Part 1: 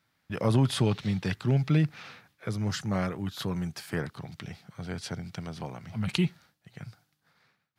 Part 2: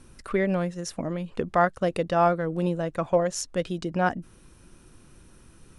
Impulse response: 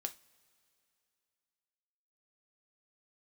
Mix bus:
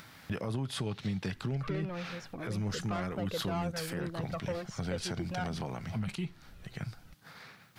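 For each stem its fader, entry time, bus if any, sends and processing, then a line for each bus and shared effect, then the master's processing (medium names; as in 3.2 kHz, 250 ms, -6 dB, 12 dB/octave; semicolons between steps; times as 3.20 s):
+2.0 dB, 0.00 s, send -7.5 dB, compression 10:1, threshold -35 dBFS, peak gain reduction 16.5 dB
-3.5 dB, 1.35 s, no send, Chebyshev low-pass 3.3 kHz, order 2; saturation -21 dBFS, distortion -11 dB; Shepard-style flanger falling 1.8 Hz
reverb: on, pre-delay 3 ms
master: upward compressor, threshold -39 dBFS; peak limiter -25 dBFS, peak gain reduction 11 dB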